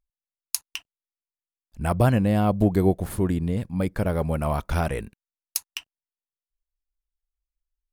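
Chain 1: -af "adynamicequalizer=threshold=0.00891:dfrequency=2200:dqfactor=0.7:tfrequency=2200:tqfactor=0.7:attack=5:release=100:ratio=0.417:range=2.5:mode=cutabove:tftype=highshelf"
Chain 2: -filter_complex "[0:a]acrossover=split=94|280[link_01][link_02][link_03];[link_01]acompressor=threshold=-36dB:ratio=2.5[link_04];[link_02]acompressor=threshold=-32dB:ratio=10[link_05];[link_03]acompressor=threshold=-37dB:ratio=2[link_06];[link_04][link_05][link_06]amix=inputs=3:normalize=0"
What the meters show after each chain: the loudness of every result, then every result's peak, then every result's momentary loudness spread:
−25.0, −32.0 LKFS; −5.5, −11.5 dBFS; 12, 11 LU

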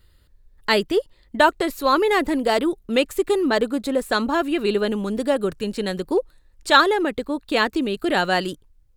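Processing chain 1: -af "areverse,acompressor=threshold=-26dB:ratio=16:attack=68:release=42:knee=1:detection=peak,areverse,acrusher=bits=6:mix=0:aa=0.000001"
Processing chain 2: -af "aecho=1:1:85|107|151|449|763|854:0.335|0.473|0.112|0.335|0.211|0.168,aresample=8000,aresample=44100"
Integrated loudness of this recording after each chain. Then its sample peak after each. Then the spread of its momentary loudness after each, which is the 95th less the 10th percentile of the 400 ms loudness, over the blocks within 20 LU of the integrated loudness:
−25.0, −20.0 LKFS; −9.0, −3.0 dBFS; 5, 7 LU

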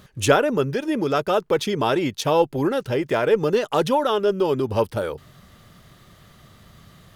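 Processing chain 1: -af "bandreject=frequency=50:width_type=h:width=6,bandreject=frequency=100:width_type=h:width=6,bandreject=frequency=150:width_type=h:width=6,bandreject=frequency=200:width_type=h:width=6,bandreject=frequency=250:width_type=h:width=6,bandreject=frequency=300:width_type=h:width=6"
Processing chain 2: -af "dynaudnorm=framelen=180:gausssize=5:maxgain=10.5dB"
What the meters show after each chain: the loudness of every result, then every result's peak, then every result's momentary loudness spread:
−21.5, −16.0 LKFS; −3.0, −1.0 dBFS; 5, 6 LU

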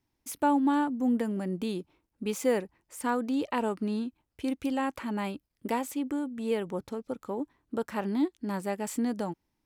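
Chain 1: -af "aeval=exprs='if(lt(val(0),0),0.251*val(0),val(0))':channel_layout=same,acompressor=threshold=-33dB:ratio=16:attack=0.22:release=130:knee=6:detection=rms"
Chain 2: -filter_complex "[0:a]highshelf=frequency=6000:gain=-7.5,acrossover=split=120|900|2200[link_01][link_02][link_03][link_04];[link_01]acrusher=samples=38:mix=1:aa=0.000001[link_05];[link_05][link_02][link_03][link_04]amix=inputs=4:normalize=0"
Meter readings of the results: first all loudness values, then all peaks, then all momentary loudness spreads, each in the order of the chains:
−44.0, −31.5 LKFS; −29.5, −14.0 dBFS; 7, 10 LU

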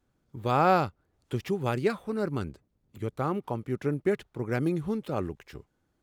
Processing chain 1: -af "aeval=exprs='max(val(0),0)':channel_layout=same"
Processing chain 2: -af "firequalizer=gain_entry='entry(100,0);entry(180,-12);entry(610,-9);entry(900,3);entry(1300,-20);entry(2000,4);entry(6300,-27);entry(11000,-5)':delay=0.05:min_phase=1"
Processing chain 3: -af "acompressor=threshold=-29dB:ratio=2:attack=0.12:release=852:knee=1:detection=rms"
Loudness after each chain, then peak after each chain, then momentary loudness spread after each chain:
−34.0, −36.0, −36.0 LKFS; −11.0, −18.0, −20.0 dBFS; 13, 15, 12 LU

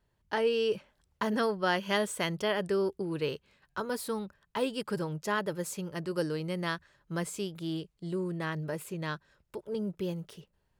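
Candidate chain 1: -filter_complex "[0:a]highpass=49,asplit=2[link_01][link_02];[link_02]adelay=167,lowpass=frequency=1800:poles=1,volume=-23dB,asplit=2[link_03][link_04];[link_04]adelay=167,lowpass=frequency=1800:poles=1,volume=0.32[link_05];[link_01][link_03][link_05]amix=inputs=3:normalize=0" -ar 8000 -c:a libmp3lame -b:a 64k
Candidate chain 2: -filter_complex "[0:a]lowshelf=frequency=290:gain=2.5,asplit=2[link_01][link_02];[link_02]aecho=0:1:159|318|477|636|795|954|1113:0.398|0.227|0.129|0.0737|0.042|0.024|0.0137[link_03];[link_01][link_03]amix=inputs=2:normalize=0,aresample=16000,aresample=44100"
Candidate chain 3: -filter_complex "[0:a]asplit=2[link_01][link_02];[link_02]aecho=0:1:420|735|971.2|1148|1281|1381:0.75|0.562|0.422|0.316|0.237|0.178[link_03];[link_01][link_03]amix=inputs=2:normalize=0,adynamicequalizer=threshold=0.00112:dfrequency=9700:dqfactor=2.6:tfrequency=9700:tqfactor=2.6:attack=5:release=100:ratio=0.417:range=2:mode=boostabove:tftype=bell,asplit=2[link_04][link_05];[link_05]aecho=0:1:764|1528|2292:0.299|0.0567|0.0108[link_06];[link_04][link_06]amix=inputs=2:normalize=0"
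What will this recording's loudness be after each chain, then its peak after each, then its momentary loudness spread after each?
−34.0, −31.5, −29.5 LKFS; −14.5, −14.5, −13.5 dBFS; 10, 9, 7 LU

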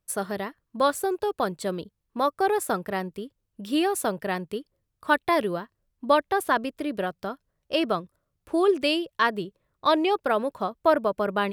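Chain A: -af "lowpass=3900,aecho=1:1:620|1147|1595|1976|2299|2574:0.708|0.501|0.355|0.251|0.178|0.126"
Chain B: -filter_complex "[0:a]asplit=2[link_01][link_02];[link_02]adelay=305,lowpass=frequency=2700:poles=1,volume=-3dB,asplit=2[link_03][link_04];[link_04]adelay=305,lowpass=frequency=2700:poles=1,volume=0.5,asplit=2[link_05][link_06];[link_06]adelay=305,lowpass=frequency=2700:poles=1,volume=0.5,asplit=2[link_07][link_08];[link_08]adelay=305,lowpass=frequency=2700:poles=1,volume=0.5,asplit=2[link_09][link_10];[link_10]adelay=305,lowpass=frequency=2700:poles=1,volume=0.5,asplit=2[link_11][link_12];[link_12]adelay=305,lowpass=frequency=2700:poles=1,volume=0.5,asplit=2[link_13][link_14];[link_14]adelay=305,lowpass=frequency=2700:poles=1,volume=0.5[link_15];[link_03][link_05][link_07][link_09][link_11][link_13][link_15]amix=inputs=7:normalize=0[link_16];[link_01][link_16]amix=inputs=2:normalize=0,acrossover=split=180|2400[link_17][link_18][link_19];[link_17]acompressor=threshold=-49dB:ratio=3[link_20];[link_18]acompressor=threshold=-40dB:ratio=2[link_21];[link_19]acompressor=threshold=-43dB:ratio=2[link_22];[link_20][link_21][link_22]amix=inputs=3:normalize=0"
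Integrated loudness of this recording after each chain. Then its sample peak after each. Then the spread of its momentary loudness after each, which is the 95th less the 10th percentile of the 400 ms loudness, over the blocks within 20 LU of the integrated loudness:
−24.0, −34.5 LKFS; −6.0, −18.0 dBFS; 6, 5 LU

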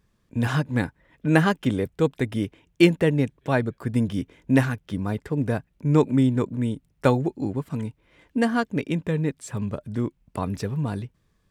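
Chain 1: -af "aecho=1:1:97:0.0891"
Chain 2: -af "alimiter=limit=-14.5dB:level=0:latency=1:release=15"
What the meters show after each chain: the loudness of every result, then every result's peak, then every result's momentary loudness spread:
−25.0, −27.0 LKFS; −3.0, −14.5 dBFS; 11, 8 LU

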